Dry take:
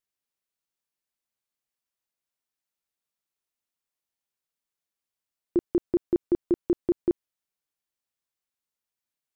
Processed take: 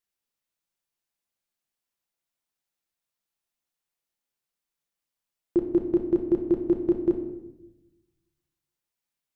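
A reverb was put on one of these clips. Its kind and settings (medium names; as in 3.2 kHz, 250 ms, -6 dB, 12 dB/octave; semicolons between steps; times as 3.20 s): simulated room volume 360 m³, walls mixed, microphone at 0.8 m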